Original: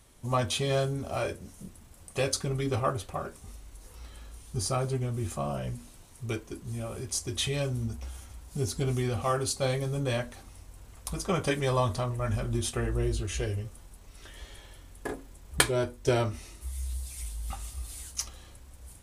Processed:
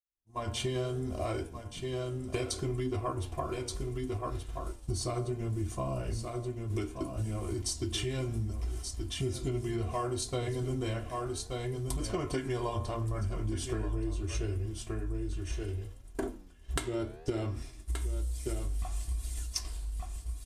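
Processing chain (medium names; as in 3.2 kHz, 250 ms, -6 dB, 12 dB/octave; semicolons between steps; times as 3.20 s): fade-in on the opening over 0.73 s; level rider gain up to 5 dB; bass shelf 440 Hz +7 dB; de-hum 126.6 Hz, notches 29; tape speed -7%; comb 2.9 ms, depth 57%; expander -25 dBFS; on a send: delay 1176 ms -11.5 dB; on the sum: flange 0.68 Hz, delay 7 ms, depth 9.7 ms, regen +89%; compression 6:1, threshold -33 dBFS, peak gain reduction 16 dB; trim +2 dB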